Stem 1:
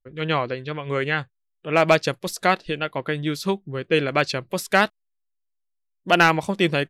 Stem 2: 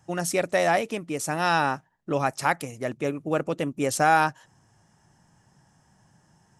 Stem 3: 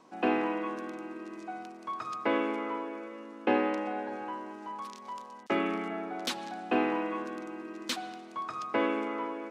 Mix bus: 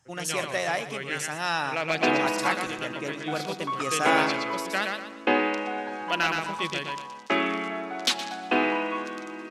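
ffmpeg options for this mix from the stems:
-filter_complex "[0:a]volume=-15.5dB,asplit=2[a][b];[b]volume=-4dB[c];[1:a]volume=-9.5dB,asplit=2[d][e];[e]volume=-14dB[f];[2:a]adelay=1800,volume=1.5dB,asplit=2[g][h];[h]volume=-14dB[i];[c][f][i]amix=inputs=3:normalize=0,aecho=0:1:119|238|357|476|595:1|0.34|0.116|0.0393|0.0134[j];[a][d][g][j]amix=inputs=4:normalize=0,equalizer=f=4.3k:w=0.31:g=9.5"

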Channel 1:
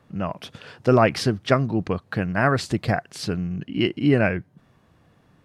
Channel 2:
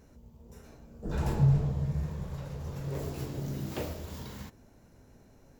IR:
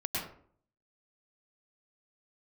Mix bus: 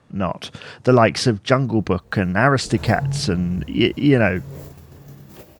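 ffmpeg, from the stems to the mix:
-filter_complex "[0:a]lowpass=f=9.3k:w=0.5412,lowpass=f=9.3k:w=1.3066,volume=1.5dB,asplit=2[a][b];[1:a]flanger=delay=16.5:depth=6.9:speed=0.48,adelay=1600,volume=-3.5dB,asplit=2[c][d];[d]volume=-17.5dB[e];[b]apad=whole_len=317324[f];[c][f]sidechaingate=range=-16dB:threshold=-54dB:ratio=16:detection=peak[g];[2:a]atrim=start_sample=2205[h];[e][h]afir=irnorm=-1:irlink=0[i];[a][g][i]amix=inputs=3:normalize=0,highshelf=f=10k:g=11,dynaudnorm=f=120:g=3:m=4dB"

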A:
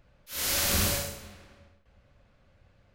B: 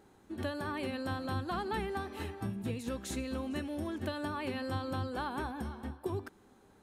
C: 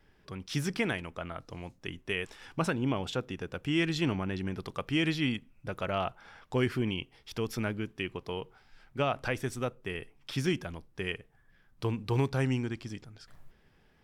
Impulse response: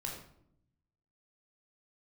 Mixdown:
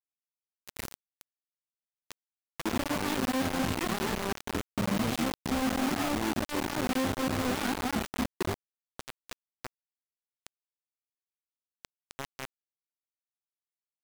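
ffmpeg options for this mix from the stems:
-filter_complex "[0:a]acrossover=split=340[a][b];[b]acompressor=threshold=-38dB:ratio=3[c];[a][c]amix=inputs=2:normalize=0,volume=-10dB[d];[1:a]equalizer=f=220:t=o:w=1.3:g=13.5,adelay=2350,volume=0dB[e];[2:a]bandreject=f=57.17:t=h:w=4,bandreject=f=114.34:t=h:w=4,bandreject=f=171.51:t=h:w=4,bandreject=f=228.68:t=h:w=4,bandreject=f=285.85:t=h:w=4,bandreject=f=343.02:t=h:w=4,asplit=2[f][g];[g]highpass=f=720:p=1,volume=21dB,asoftclip=type=tanh:threshold=-16dB[h];[f][h]amix=inputs=2:normalize=0,lowpass=f=2.3k:p=1,volume=-6dB,asplit=2[i][j];[j]afreqshift=-2.9[k];[i][k]amix=inputs=2:normalize=1,volume=-10dB[l];[e][l]amix=inputs=2:normalize=0,aemphasis=mode=reproduction:type=75fm,alimiter=limit=-24dB:level=0:latency=1:release=181,volume=0dB[m];[d][m]amix=inputs=2:normalize=0,acrusher=bits=4:mix=0:aa=0.000001"

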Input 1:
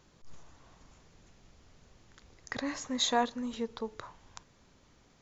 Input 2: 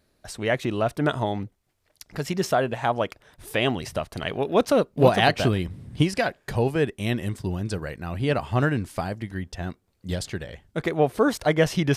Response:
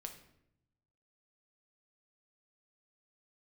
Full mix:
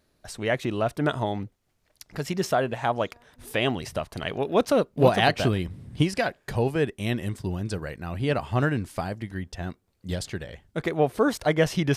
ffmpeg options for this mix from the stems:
-filter_complex "[0:a]acompressor=threshold=-36dB:ratio=6,volume=-15.5dB[a];[1:a]volume=-1.5dB,asplit=2[b][c];[c]apad=whole_len=230004[d];[a][d]sidechaincompress=threshold=-26dB:ratio=8:attack=16:release=1030[e];[e][b]amix=inputs=2:normalize=0"

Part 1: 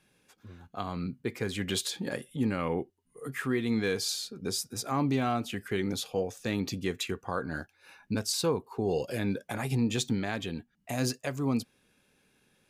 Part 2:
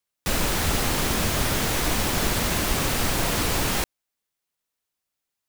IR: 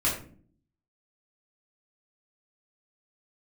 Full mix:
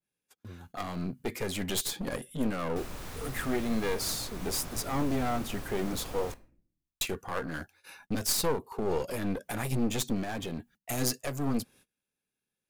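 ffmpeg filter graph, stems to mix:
-filter_complex "[0:a]agate=range=-26dB:threshold=-57dB:ratio=16:detection=peak,aeval=exprs='clip(val(0),-1,0.0106)':c=same,highshelf=f=7.2k:g=11,volume=3dB,asplit=3[a][b][c];[a]atrim=end=6.32,asetpts=PTS-STARTPTS,afade=t=out:st=6.316:d=0.004:c=hsin[d];[b]atrim=start=6.32:end=7.01,asetpts=PTS-STARTPTS,volume=0[e];[c]atrim=start=7.01,asetpts=PTS-STARTPTS,afade=t=in:d=0.004:c=hsin[f];[d][e][f]concat=n=3:v=0:a=1[g];[1:a]adelay=2500,volume=-18dB,asplit=2[h][i];[i]volume=-21dB[j];[2:a]atrim=start_sample=2205[k];[j][k]afir=irnorm=-1:irlink=0[l];[g][h][l]amix=inputs=3:normalize=0,adynamicequalizer=threshold=0.00398:dfrequency=1700:dqfactor=0.7:tfrequency=1700:tqfactor=0.7:attack=5:release=100:ratio=0.375:range=3:mode=cutabove:tftype=highshelf"

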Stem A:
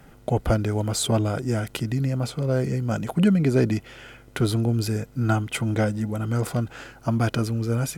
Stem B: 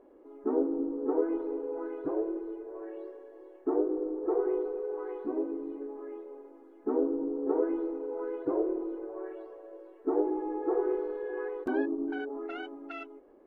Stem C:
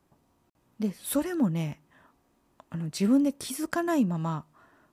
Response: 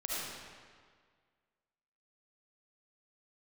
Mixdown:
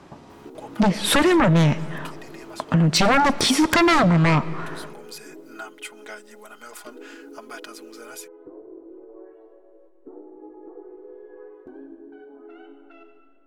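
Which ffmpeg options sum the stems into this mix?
-filter_complex "[0:a]highpass=930,aecho=1:1:4.8:0.8,adelay=300,volume=-2.5dB[a];[1:a]tiltshelf=f=700:g=4.5,acompressor=threshold=-33dB:ratio=4,flanger=delay=9.9:depth=7.3:regen=63:speed=0.45:shape=triangular,volume=-4dB,asplit=2[b][c];[c]volume=-9dB[d];[2:a]lowpass=5.1k,lowshelf=f=95:g=-10.5,aeval=exprs='0.211*sin(PI/2*6.31*val(0)/0.211)':c=same,volume=3dB,asplit=3[e][f][g];[f]volume=-21.5dB[h];[g]apad=whole_len=365134[i];[a][i]sidechaincompress=threshold=-27dB:ratio=8:attack=27:release=615[j];[j][b]amix=inputs=2:normalize=0,agate=range=-12dB:threshold=-54dB:ratio=16:detection=peak,acompressor=threshold=-45dB:ratio=1.5,volume=0dB[k];[3:a]atrim=start_sample=2205[l];[d][h]amix=inputs=2:normalize=0[m];[m][l]afir=irnorm=-1:irlink=0[n];[e][k][n]amix=inputs=3:normalize=0,acompressor=threshold=-16dB:ratio=2.5"

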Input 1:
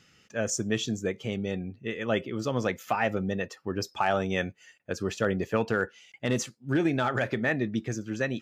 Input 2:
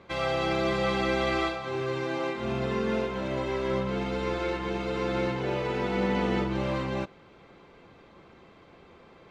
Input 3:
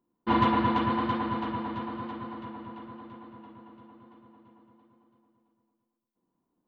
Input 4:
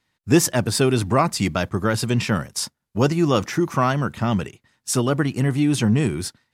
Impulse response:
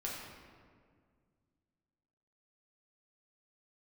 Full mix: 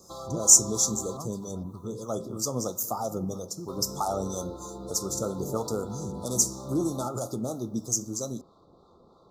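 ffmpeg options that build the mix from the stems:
-filter_complex "[0:a]aexciter=amount=12.7:drive=4.6:freq=5.5k,flanger=delay=9:depth=7.2:regen=-75:speed=0.68:shape=sinusoidal,volume=2.5dB,asplit=3[a][b][c];[b]volume=-16dB[d];[1:a]acompressor=threshold=-33dB:ratio=4,volume=-1.5dB,asplit=3[e][f][g];[e]atrim=end=1.17,asetpts=PTS-STARTPTS,afade=t=out:st=1.166:d=0.004:c=hsin[h];[f]atrim=start=1.17:end=3.68,asetpts=PTS-STARTPTS,volume=0[i];[g]atrim=start=3.68,asetpts=PTS-STARTPTS,afade=t=in:d=0.004:c=hsin[j];[h][i][j]concat=n=3:v=0:a=1[k];[2:a]volume=-18dB[l];[3:a]bass=f=250:g=9,treble=f=4k:g=1,volume=-20dB[m];[c]apad=whole_len=288159[n];[m][n]sidechaincompress=threshold=-39dB:ratio=8:attack=16:release=104[o];[4:a]atrim=start_sample=2205[p];[d][p]afir=irnorm=-1:irlink=0[q];[a][k][l][o][q]amix=inputs=5:normalize=0,acrossover=split=640[r][s];[r]aeval=exprs='val(0)*(1-0.5/2+0.5/2*cos(2*PI*3.1*n/s))':c=same[t];[s]aeval=exprs='val(0)*(1-0.5/2-0.5/2*cos(2*PI*3.1*n/s))':c=same[u];[t][u]amix=inputs=2:normalize=0,asuperstop=centerf=2200:order=20:qfactor=0.98"

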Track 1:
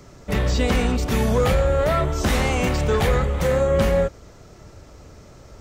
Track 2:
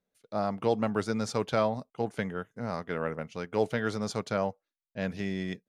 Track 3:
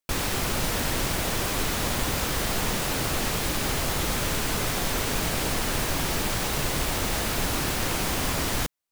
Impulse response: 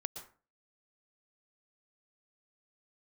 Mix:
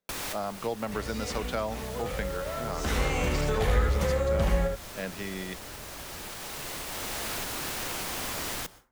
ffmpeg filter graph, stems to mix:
-filter_complex "[0:a]lowshelf=f=68:g=11,adelay=600,volume=-2dB,afade=t=in:st=2.59:d=0.61:silence=0.237137,asplit=2[a][b];[b]volume=-4dB[c];[1:a]volume=1dB,asplit=2[d][e];[2:a]alimiter=limit=-18.5dB:level=0:latency=1:release=486,acrusher=bits=5:mix=0:aa=0.000001,volume=-4.5dB,asplit=2[f][g];[g]volume=-9dB[h];[e]apad=whole_len=393137[i];[f][i]sidechaincompress=threshold=-46dB:ratio=8:attack=16:release=1330[j];[3:a]atrim=start_sample=2205[k];[h][k]afir=irnorm=-1:irlink=0[l];[c]aecho=0:1:75:1[m];[a][d][j][l][m]amix=inputs=5:normalize=0,lowshelf=f=270:g=-9.5,acrossover=split=170[n][o];[o]acompressor=threshold=-29dB:ratio=2.5[p];[n][p]amix=inputs=2:normalize=0"

